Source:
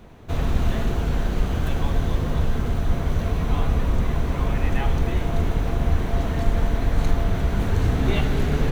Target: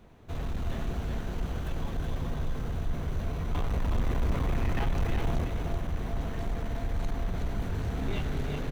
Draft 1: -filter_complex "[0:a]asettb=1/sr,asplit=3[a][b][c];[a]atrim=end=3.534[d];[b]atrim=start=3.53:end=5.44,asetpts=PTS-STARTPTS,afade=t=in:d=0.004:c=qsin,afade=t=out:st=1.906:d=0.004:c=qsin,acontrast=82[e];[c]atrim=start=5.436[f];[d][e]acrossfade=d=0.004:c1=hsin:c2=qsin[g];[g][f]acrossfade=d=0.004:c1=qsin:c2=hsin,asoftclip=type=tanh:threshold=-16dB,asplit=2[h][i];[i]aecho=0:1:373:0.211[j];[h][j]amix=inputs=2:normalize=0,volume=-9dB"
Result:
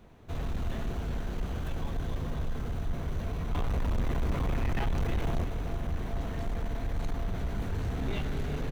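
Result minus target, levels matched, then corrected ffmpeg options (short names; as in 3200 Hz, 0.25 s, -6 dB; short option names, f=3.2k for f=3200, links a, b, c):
echo-to-direct -8.5 dB
-filter_complex "[0:a]asettb=1/sr,asplit=3[a][b][c];[a]atrim=end=3.534[d];[b]atrim=start=3.53:end=5.44,asetpts=PTS-STARTPTS,afade=t=in:d=0.004:c=qsin,afade=t=out:st=1.906:d=0.004:c=qsin,acontrast=82[e];[c]atrim=start=5.436[f];[d][e]acrossfade=d=0.004:c1=hsin:c2=qsin[g];[g][f]acrossfade=d=0.004:c1=qsin:c2=hsin,asoftclip=type=tanh:threshold=-16dB,asplit=2[h][i];[i]aecho=0:1:373:0.562[j];[h][j]amix=inputs=2:normalize=0,volume=-9dB"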